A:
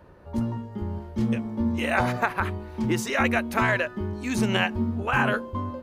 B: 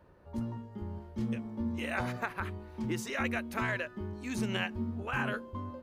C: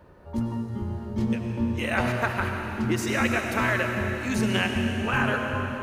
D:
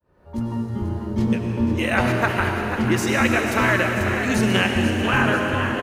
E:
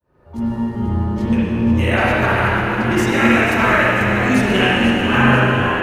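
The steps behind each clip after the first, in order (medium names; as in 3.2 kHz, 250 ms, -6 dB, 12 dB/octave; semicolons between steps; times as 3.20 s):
dynamic bell 790 Hz, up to -4 dB, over -35 dBFS, Q 1.3; trim -9 dB
reverberation RT60 3.4 s, pre-delay 55 ms, DRR 3 dB; trim +8 dB
fade-in on the opening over 0.61 s; frequency-shifting echo 491 ms, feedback 56%, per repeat +93 Hz, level -9.5 dB; trim +5 dB
spring tank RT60 1.4 s, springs 39/47/59 ms, chirp 60 ms, DRR -6 dB; trim -1.5 dB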